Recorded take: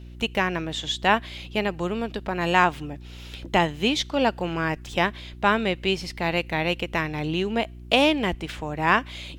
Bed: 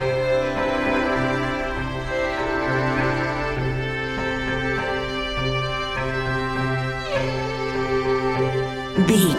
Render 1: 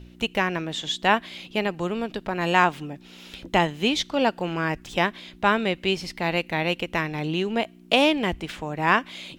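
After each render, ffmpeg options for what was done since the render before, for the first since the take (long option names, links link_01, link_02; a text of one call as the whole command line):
ffmpeg -i in.wav -af "bandreject=frequency=60:width_type=h:width=4,bandreject=frequency=120:width_type=h:width=4" out.wav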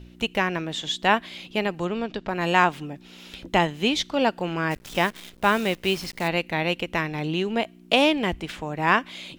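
ffmpeg -i in.wav -filter_complex "[0:a]asettb=1/sr,asplit=3[link_01][link_02][link_03];[link_01]atrim=end=1.854[link_04];[link_02]atrim=start=1.85:end=2.28,asetpts=PTS-STARTPTS,afade=type=in:duration=0.004:curve=qsin,afade=type=out:start_time=0.426:duration=0.004:curve=qsin,lowpass=frequency=6800:width=0.5412,lowpass=frequency=6800:width=1.3066[link_05];[link_03]atrim=start=2.276[link_06];[link_04][link_05]acrossfade=duration=0.004:curve1=hsin:curve2=qsin[link_07];[link_07][link_06]acrossfade=duration=0.004:curve1=qsin:curve2=hsin,asplit=3[link_08][link_09][link_10];[link_08]afade=type=out:start_time=4.7:duration=0.02[link_11];[link_09]acrusher=bits=7:dc=4:mix=0:aa=0.000001,afade=type=in:start_time=4.7:duration=0.02,afade=type=out:start_time=6.27:duration=0.02[link_12];[link_10]afade=type=in:start_time=6.27:duration=0.02[link_13];[link_11][link_12][link_13]amix=inputs=3:normalize=0" out.wav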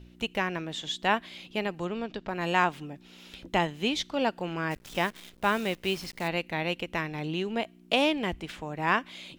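ffmpeg -i in.wav -af "volume=-5.5dB" out.wav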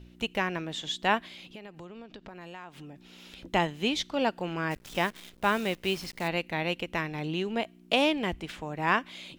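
ffmpeg -i in.wav -filter_complex "[0:a]asettb=1/sr,asplit=3[link_01][link_02][link_03];[link_01]atrim=end=1.264[link_04];[link_02]atrim=start=1.26:end=3.38,asetpts=PTS-STARTPTS,afade=type=in:duration=0.004:curve=qsin,afade=type=out:start_time=2.116:duration=0.004:curve=qsin,acompressor=threshold=-42dB:ratio=5:attack=3.2:release=140:knee=1:detection=peak[link_05];[link_03]atrim=start=3.376[link_06];[link_04][link_05]acrossfade=duration=0.004:curve1=hsin:curve2=qsin[link_07];[link_07][link_06]acrossfade=duration=0.004:curve1=qsin:curve2=hsin" out.wav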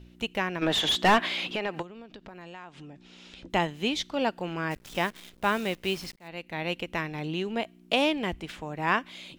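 ffmpeg -i in.wav -filter_complex "[0:a]asplit=3[link_01][link_02][link_03];[link_01]afade=type=out:start_time=0.61:duration=0.02[link_04];[link_02]asplit=2[link_05][link_06];[link_06]highpass=frequency=720:poles=1,volume=27dB,asoftclip=type=tanh:threshold=-11.5dB[link_07];[link_05][link_07]amix=inputs=2:normalize=0,lowpass=frequency=2200:poles=1,volume=-6dB,afade=type=in:start_time=0.61:duration=0.02,afade=type=out:start_time=1.81:duration=0.02[link_08];[link_03]afade=type=in:start_time=1.81:duration=0.02[link_09];[link_04][link_08][link_09]amix=inputs=3:normalize=0,asettb=1/sr,asplit=3[link_10][link_11][link_12];[link_10]atrim=end=2.424[link_13];[link_11]atrim=start=2.42:end=3.5,asetpts=PTS-STARTPTS,afade=type=in:duration=0.004:curve=qsin,afade=type=out:start_time=1.076:duration=0.004:curve=qsin,lowpass=frequency=8200:width=0.5412,lowpass=frequency=8200:width=1.3066[link_14];[link_12]atrim=start=3.496[link_15];[link_13][link_14]acrossfade=duration=0.004:curve1=hsin:curve2=qsin[link_16];[link_16][link_15]acrossfade=duration=0.004:curve1=qsin:curve2=hsin,asplit=2[link_17][link_18];[link_17]atrim=end=6.16,asetpts=PTS-STARTPTS,afade=type=out:start_time=6.156:duration=0.004:curve=hsin[link_19];[link_18]atrim=start=6.16,asetpts=PTS-STARTPTS,afade=type=in:duration=0.57[link_20];[link_19][link_20]concat=n=2:v=0:a=1" out.wav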